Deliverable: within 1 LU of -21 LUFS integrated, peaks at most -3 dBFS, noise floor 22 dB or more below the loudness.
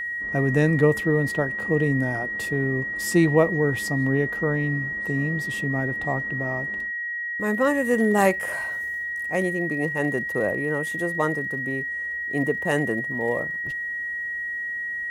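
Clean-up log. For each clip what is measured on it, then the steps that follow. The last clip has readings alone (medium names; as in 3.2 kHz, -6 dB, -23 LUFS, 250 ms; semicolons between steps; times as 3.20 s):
steady tone 1.9 kHz; tone level -27 dBFS; loudness -24.0 LUFS; peak level -5.5 dBFS; loudness target -21.0 LUFS
-> band-stop 1.9 kHz, Q 30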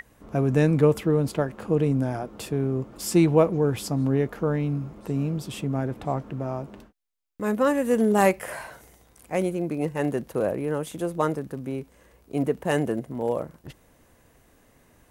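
steady tone not found; loudness -25.5 LUFS; peak level -5.5 dBFS; loudness target -21.0 LUFS
-> trim +4.5 dB; peak limiter -3 dBFS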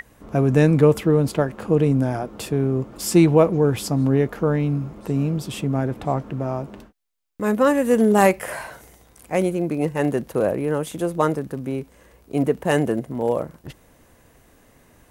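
loudness -21.0 LUFS; peak level -3.0 dBFS; noise floor -55 dBFS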